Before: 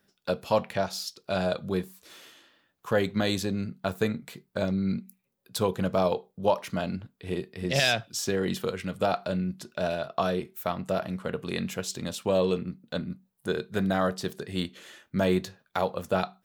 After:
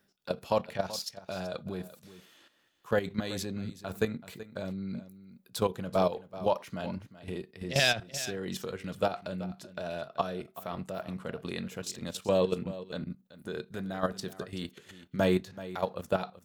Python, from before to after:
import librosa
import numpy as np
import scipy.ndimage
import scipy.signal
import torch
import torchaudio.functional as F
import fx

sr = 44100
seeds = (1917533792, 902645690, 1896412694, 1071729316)

p1 = fx.level_steps(x, sr, step_db=12)
y = p1 + fx.echo_single(p1, sr, ms=380, db=-15.5, dry=0)